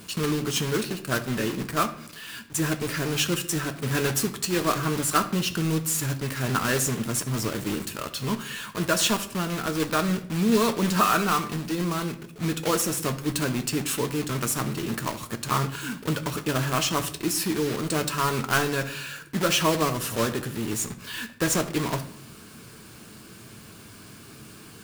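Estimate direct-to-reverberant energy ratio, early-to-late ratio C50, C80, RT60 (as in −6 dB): 7.0 dB, 13.5 dB, 16.5 dB, 0.65 s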